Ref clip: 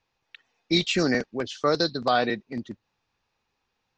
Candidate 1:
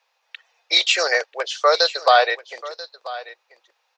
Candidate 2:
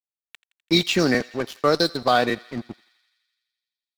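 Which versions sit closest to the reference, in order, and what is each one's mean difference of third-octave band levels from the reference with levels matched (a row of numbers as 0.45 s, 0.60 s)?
2, 1; 5.5 dB, 10.5 dB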